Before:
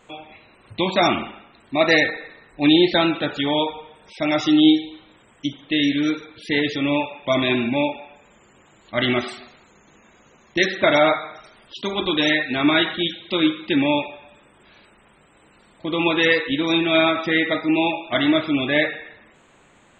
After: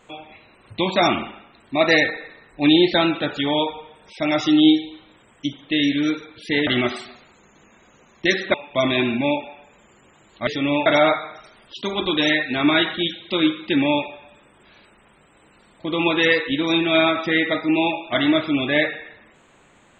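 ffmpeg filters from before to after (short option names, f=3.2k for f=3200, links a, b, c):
-filter_complex "[0:a]asplit=5[a][b][c][d][e];[a]atrim=end=6.672[f];[b]atrim=start=8.988:end=10.862[g];[c]atrim=start=7.058:end=8.992[h];[d]atrim=start=6.668:end=7.062[i];[e]atrim=start=10.858[j];[f][g]acrossfade=d=0.004:c1=hsin:c2=hsin[k];[k][h]acrossfade=d=0.004:c1=hsin:c2=hsin[l];[l][i]acrossfade=d=0.004:c1=hsin:c2=hsin[m];[m][j]acrossfade=d=0.004:c1=hsin:c2=hsin"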